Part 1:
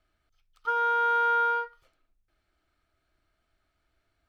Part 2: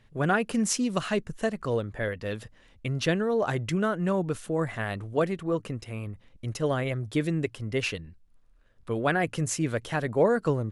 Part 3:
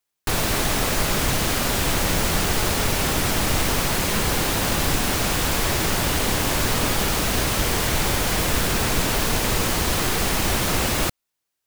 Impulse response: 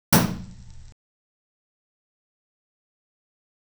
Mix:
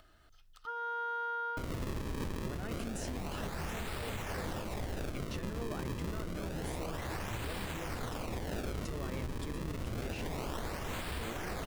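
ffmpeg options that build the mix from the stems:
-filter_complex "[0:a]bandreject=f=2.3k:w=6.2,dynaudnorm=f=110:g=13:m=4dB,volume=-15.5dB[a];[1:a]adelay=2300,volume=-1dB[b];[2:a]equalizer=f=71:w=4.1:g=9,acrusher=samples=35:mix=1:aa=0.000001:lfo=1:lforange=56:lforate=0.28,adelay=1300,volume=-12dB[c];[a][b]amix=inputs=2:normalize=0,acompressor=mode=upward:threshold=-41dB:ratio=2.5,alimiter=level_in=7.5dB:limit=-24dB:level=0:latency=1,volume=-7.5dB,volume=0dB[d];[c][d]amix=inputs=2:normalize=0,alimiter=level_in=5.5dB:limit=-24dB:level=0:latency=1:release=285,volume=-5.5dB"

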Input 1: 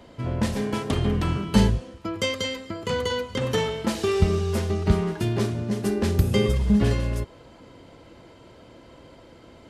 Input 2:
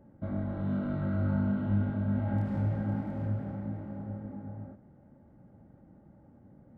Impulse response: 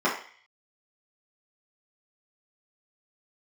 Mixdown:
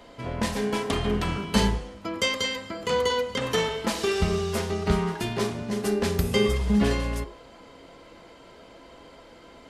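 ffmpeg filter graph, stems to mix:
-filter_complex "[0:a]bandreject=f=50:t=h:w=6,bandreject=f=100:t=h:w=6,bandreject=f=150:t=h:w=6,bandreject=f=200:t=h:w=6,bandreject=f=250:t=h:w=6,bandreject=f=300:t=h:w=6,bandreject=f=350:t=h:w=6,volume=2.5dB,asplit=2[a][b];[b]volume=-22.5dB[c];[1:a]volume=-12dB[d];[2:a]atrim=start_sample=2205[e];[c][e]afir=irnorm=-1:irlink=0[f];[a][d][f]amix=inputs=3:normalize=0,equalizer=f=110:w=1:g=-12.5"

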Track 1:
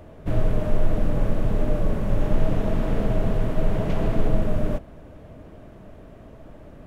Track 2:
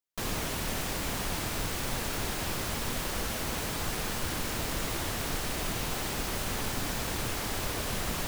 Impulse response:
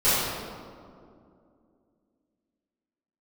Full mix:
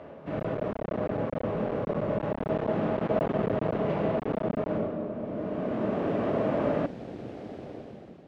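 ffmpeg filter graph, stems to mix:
-filter_complex "[0:a]volume=2dB,asplit=2[a][b];[b]volume=-13.5dB[c];[1:a]lowshelf=f=280:g=5.5,afwtdn=0.0282,volume=-13dB[d];[2:a]atrim=start_sample=2205[e];[c][e]afir=irnorm=-1:irlink=0[f];[a][d][f]amix=inputs=3:normalize=0,dynaudnorm=f=190:g=7:m=12.5dB,asoftclip=type=hard:threshold=-10dB,highpass=220,lowpass=2.9k"

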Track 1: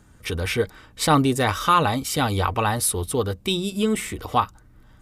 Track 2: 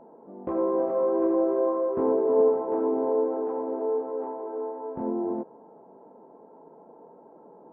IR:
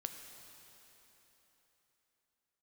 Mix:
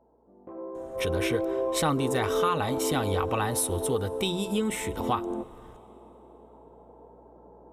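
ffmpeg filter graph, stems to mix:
-filter_complex "[0:a]bandreject=f=4.7k:w=6.4,adelay=750,volume=-3dB,asplit=2[a][b];[b]volume=-14.5dB[c];[1:a]aeval=exprs='val(0)+0.00112*(sin(2*PI*60*n/s)+sin(2*PI*2*60*n/s)/2+sin(2*PI*3*60*n/s)/3+sin(2*PI*4*60*n/s)/4+sin(2*PI*5*60*n/s)/5)':c=same,volume=-4dB,afade=t=in:st=0.92:d=0.24:silence=0.266073,asplit=2[d][e];[e]volume=-7dB[f];[2:a]atrim=start_sample=2205[g];[c][f]amix=inputs=2:normalize=0[h];[h][g]afir=irnorm=-1:irlink=0[i];[a][d][i]amix=inputs=3:normalize=0,acompressor=threshold=-25dB:ratio=2.5"

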